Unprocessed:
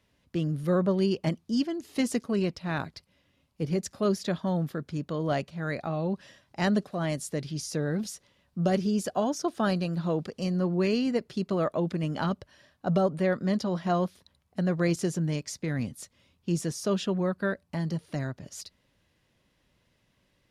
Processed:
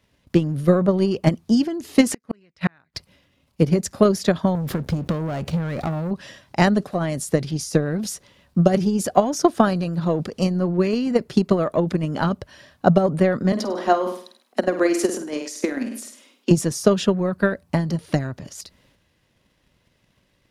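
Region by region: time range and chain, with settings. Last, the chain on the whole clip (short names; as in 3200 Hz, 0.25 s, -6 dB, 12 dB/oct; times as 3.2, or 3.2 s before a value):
2.08–2.95 bell 1900 Hz +10.5 dB 1.2 oct + flipped gate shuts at -21 dBFS, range -41 dB
4.55–6.11 low shelf 230 Hz +8 dB + compressor 10:1, threshold -34 dBFS + sample leveller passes 3
13.52–16.51 steep high-pass 220 Hz 72 dB/oct + flutter echo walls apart 8.5 m, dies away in 0.42 s
whole clip: dynamic EQ 3700 Hz, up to -4 dB, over -49 dBFS, Q 0.72; transient shaper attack +12 dB, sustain +8 dB; gain +3.5 dB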